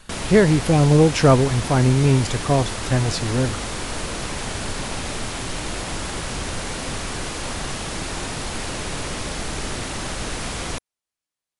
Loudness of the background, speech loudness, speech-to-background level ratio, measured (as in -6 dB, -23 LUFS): -28.0 LUFS, -18.5 LUFS, 9.5 dB